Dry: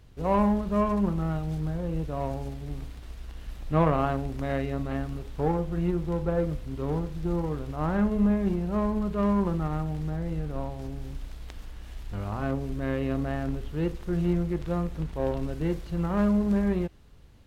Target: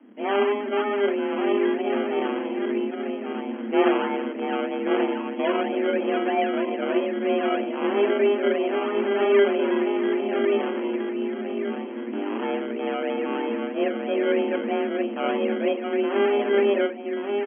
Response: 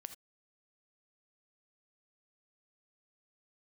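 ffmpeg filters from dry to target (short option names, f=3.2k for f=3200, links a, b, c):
-filter_complex "[0:a]acrossover=split=630[a][b];[b]asoftclip=type=tanh:threshold=-34dB[c];[a][c]amix=inputs=2:normalize=0,asplit=2[d][e];[e]adelay=25,volume=-12dB[f];[d][f]amix=inputs=2:normalize=0,asplit=2[g][h];[h]adelay=1132,lowpass=f=900:p=1,volume=-4dB,asplit=2[i][j];[j]adelay=1132,lowpass=f=900:p=1,volume=0.4,asplit=2[k][l];[l]adelay=1132,lowpass=f=900:p=1,volume=0.4,asplit=2[m][n];[n]adelay=1132,lowpass=f=900:p=1,volume=0.4,asplit=2[o][p];[p]adelay=1132,lowpass=f=900:p=1,volume=0.4[q];[g][i][k][m][o][q]amix=inputs=6:normalize=0[r];[1:a]atrim=start_sample=2205[s];[r][s]afir=irnorm=-1:irlink=0,aresample=16000,acrusher=samples=8:mix=1:aa=0.000001:lfo=1:lforange=4.8:lforate=3.1,aresample=44100,afreqshift=200,afftfilt=real='re*between(b*sr/4096,110,3300)':imag='im*between(b*sr/4096,110,3300)':win_size=4096:overlap=0.75,volume=7.5dB"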